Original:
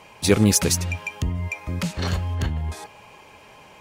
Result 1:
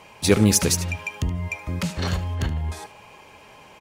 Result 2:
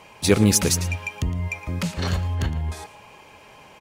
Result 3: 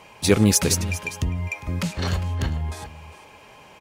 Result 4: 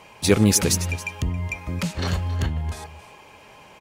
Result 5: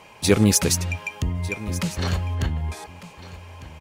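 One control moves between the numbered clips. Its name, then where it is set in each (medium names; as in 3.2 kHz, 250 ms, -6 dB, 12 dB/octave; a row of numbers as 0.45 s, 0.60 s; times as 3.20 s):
delay, time: 74 ms, 113 ms, 404 ms, 274 ms, 1201 ms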